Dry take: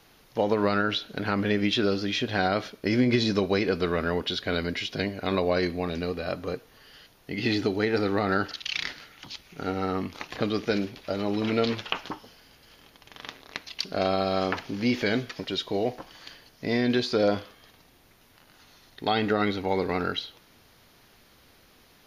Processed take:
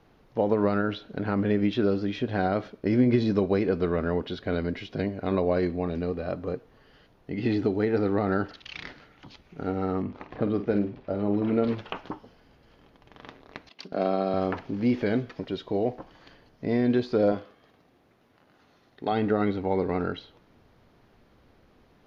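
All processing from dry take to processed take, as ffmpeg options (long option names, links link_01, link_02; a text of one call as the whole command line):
ffmpeg -i in.wav -filter_complex "[0:a]asettb=1/sr,asplit=3[link_01][link_02][link_03];[link_01]atrim=end=10.024[link_04];[link_02]atrim=start=10.02:end=11.68,asetpts=PTS-STARTPTS,afade=type=in:duration=0.004:curve=qsin,afade=type=out:start_time=1.656:duration=0.004:curve=qsin,lowpass=frequency=2000:poles=1,asplit=2[link_05][link_06];[link_06]adelay=49,volume=-10dB[link_07];[link_05][link_07]amix=inputs=2:normalize=0,atrim=end_sample=73206[link_08];[link_03]atrim=start=11.676[link_09];[link_04][link_08]acrossfade=duration=0.004:curve1=hsin:curve2=qsin[link_10];[link_10][link_09]acrossfade=duration=0.004:curve1=qsin:curve2=hsin,asettb=1/sr,asplit=3[link_11][link_12][link_13];[link_11]atrim=end=13.694[link_14];[link_12]atrim=start=13.69:end=14.34,asetpts=PTS-STARTPTS,afade=type=in:duration=0.004:curve=qsin,afade=type=out:start_time=0.646:duration=0.004:curve=qsin,highpass=frequency=160:width=0.5412,highpass=frequency=160:width=1.3066,agate=range=-7dB:threshold=-42dB:ratio=16:release=100:detection=peak[link_15];[link_13]atrim=start=14.336[link_16];[link_14][link_15]acrossfade=duration=0.004:curve1=hsin:curve2=qsin[link_17];[link_17][link_16]acrossfade=duration=0.004:curve1=qsin:curve2=hsin,asettb=1/sr,asplit=3[link_18][link_19][link_20];[link_18]atrim=end=17.324[link_21];[link_19]atrim=start=17.32:end=19.12,asetpts=PTS-STARTPTS,afade=type=in:duration=0.004:curve=qsin,afade=type=out:start_time=1.796:duration=0.004:curve=qsin,highpass=frequency=200:poles=1,bandreject=frequency=930:width=20[link_22];[link_20]atrim=start=19.116[link_23];[link_21][link_22]acrossfade=duration=0.004:curve1=hsin:curve2=qsin[link_24];[link_24][link_23]acrossfade=duration=0.004:curve1=qsin:curve2=hsin,lowpass=frequency=2700:poles=1,tiltshelf=frequency=1300:gain=5.5,volume=-3.5dB" out.wav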